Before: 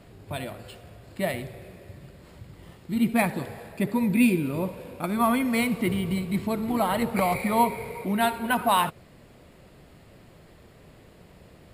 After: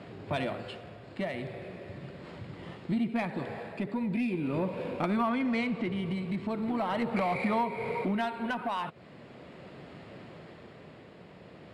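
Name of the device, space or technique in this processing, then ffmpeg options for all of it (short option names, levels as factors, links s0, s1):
AM radio: -filter_complex "[0:a]highpass=140,lowpass=3700,acompressor=threshold=0.0282:ratio=6,asoftclip=type=tanh:threshold=0.0473,tremolo=f=0.4:d=0.39,asettb=1/sr,asplit=3[s0][s1][s2];[s0]atrim=end=5.294[s3];[s1]atrim=start=5.29:end=5.96,asetpts=PTS-STARTPTS,afade=t=in:d=0.004:c=qsin,afade=t=out:st=0.666:d=0.004:c=qsin,lowpass=7900[s4];[s2]atrim=start=5.956[s5];[s3][s4]acrossfade=d=0.004:c1=hsin:c2=qsin[s6];[s6][s5]acrossfade=d=0.004:c1=qsin:c2=hsin,volume=2.11"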